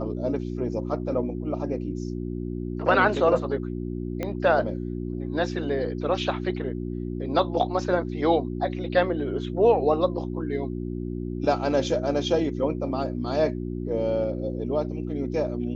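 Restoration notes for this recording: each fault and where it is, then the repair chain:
mains hum 60 Hz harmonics 6 −31 dBFS
0:04.23: click −16 dBFS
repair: click removal
hum removal 60 Hz, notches 6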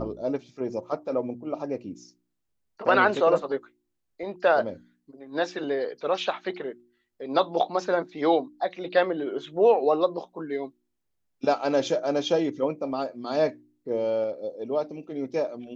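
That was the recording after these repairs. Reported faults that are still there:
0:04.23: click

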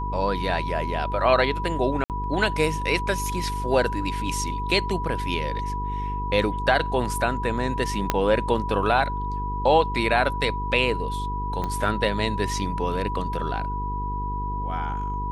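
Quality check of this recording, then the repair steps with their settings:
mains buzz 50 Hz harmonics 9 −30 dBFS
whistle 980 Hz −29 dBFS
0:02.04–0:02.10: drop-out 58 ms
0:08.10: click −5 dBFS
0:11.64: click −16 dBFS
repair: click removal
hum removal 50 Hz, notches 9
notch filter 980 Hz, Q 30
repair the gap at 0:02.04, 58 ms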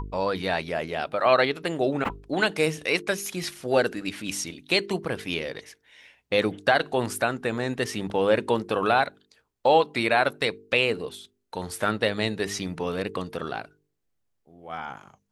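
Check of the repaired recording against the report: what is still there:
0:08.10: click
0:11.64: click

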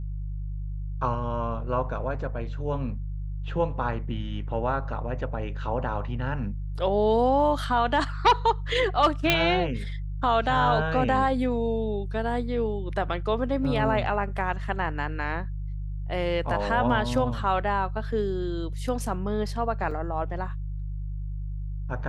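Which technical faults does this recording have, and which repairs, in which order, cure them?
mains hum 50 Hz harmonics 3 −32 dBFS
0:09.30: click −5 dBFS
0:19.91: drop-out 3.3 ms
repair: click removal
hum removal 50 Hz, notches 3
repair the gap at 0:19.91, 3.3 ms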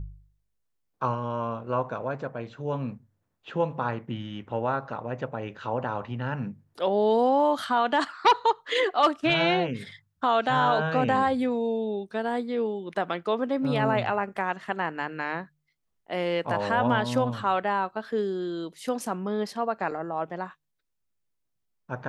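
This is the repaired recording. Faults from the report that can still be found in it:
none of them is left

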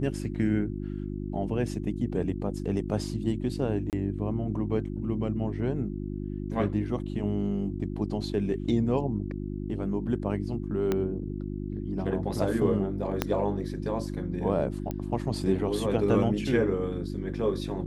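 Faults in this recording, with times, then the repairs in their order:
mains hum 50 Hz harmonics 7 −34 dBFS
0:03.90–0:03.93: drop-out 28 ms
0:10.92: click −14 dBFS
0:13.22: click −10 dBFS
0:14.91: click −20 dBFS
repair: click removal
hum removal 50 Hz, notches 7
repair the gap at 0:03.90, 28 ms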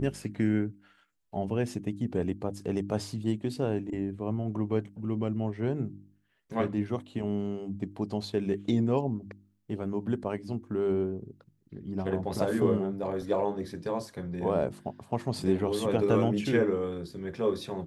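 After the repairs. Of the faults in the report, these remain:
0:10.92: click
0:13.22: click

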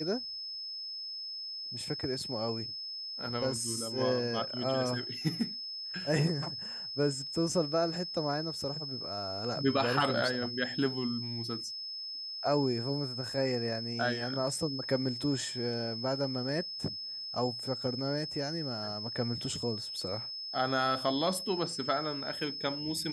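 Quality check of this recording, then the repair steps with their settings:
whistle 5,200 Hz −38 dBFS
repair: notch filter 5,200 Hz, Q 30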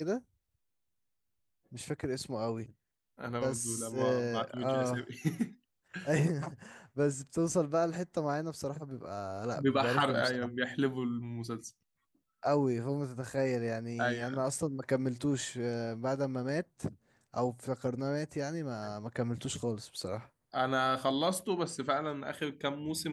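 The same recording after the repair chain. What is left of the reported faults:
none of them is left

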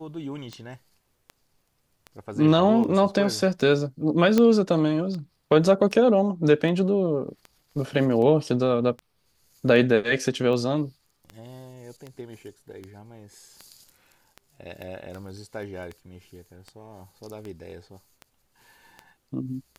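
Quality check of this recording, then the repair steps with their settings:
scratch tick 78 rpm −24 dBFS
0:04.38: click −8 dBFS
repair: click removal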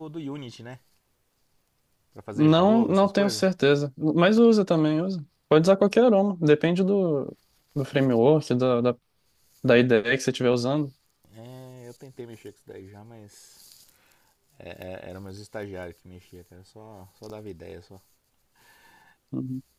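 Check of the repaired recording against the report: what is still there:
0:04.38: click

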